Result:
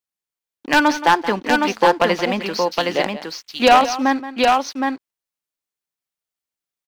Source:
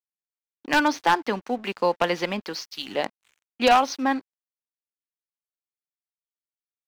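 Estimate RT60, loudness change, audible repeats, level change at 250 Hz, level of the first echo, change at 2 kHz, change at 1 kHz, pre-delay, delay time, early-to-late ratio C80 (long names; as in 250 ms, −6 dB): no reverb audible, +6.5 dB, 2, +7.5 dB, −14.0 dB, +7.0 dB, +7.0 dB, no reverb audible, 175 ms, no reverb audible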